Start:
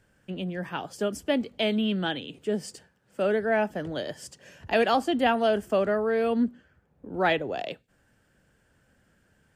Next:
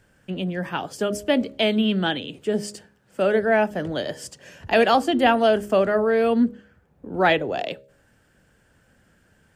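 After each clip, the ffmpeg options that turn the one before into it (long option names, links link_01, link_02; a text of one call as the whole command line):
ffmpeg -i in.wav -af "bandreject=frequency=68.77:width_type=h:width=4,bandreject=frequency=137.54:width_type=h:width=4,bandreject=frequency=206.31:width_type=h:width=4,bandreject=frequency=275.08:width_type=h:width=4,bandreject=frequency=343.85:width_type=h:width=4,bandreject=frequency=412.62:width_type=h:width=4,bandreject=frequency=481.39:width_type=h:width=4,bandreject=frequency=550.16:width_type=h:width=4,bandreject=frequency=618.93:width_type=h:width=4,volume=5.5dB" out.wav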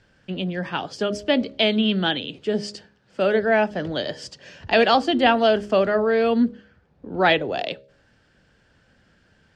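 ffmpeg -i in.wav -af "lowpass=frequency=4600:width_type=q:width=1.9" out.wav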